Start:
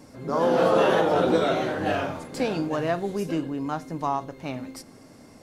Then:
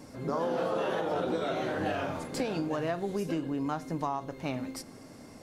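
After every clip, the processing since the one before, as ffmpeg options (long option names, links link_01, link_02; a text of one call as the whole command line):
ffmpeg -i in.wav -af "acompressor=threshold=-28dB:ratio=6" out.wav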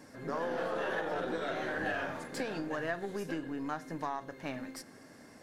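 ffmpeg -i in.wav -af "lowshelf=frequency=100:gain=-11,aeval=exprs='0.119*(cos(1*acos(clip(val(0)/0.119,-1,1)))-cos(1*PI/2))+0.00422*(cos(8*acos(clip(val(0)/0.119,-1,1)))-cos(8*PI/2))':channel_layout=same,equalizer=frequency=1700:width_type=o:width=0.35:gain=11,volume=-4.5dB" out.wav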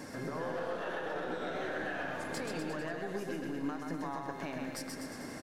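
ffmpeg -i in.wav -af "alimiter=level_in=9dB:limit=-24dB:level=0:latency=1:release=433,volume=-9dB,acompressor=threshold=-50dB:ratio=2,aecho=1:1:130|247|352.3|447.1|532.4:0.631|0.398|0.251|0.158|0.1,volume=9dB" out.wav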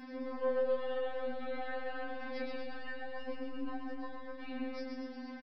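ffmpeg -i in.wav -filter_complex "[0:a]asplit=2[link_01][link_02];[link_02]adelay=25,volume=-5dB[link_03];[link_01][link_03]amix=inputs=2:normalize=0,aresample=11025,aresample=44100,afftfilt=real='re*3.46*eq(mod(b,12),0)':imag='im*3.46*eq(mod(b,12),0)':win_size=2048:overlap=0.75,volume=-2.5dB" out.wav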